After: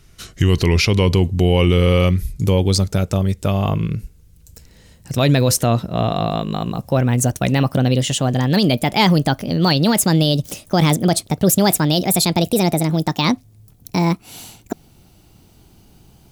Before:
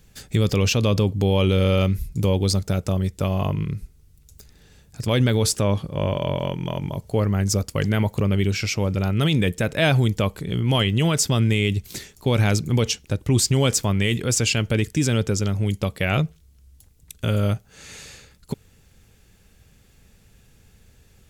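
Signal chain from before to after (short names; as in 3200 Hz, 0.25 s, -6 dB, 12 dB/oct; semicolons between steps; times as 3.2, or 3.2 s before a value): speed glide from 83% -> 178%; gain +4.5 dB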